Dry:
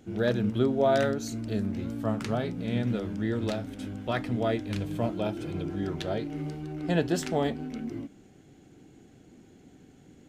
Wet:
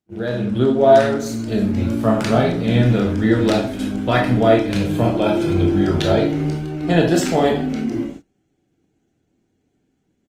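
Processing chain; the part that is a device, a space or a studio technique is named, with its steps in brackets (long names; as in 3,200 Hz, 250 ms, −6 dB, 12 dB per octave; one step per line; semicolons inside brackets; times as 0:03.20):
0:04.80–0:06.71: double-tracking delay 32 ms −11.5 dB
speakerphone in a meeting room (convolution reverb RT60 0.45 s, pre-delay 19 ms, DRR 0.5 dB; far-end echo of a speakerphone 270 ms, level −28 dB; automatic gain control gain up to 13 dB; noise gate −32 dBFS, range −28 dB; Opus 24 kbit/s 48,000 Hz)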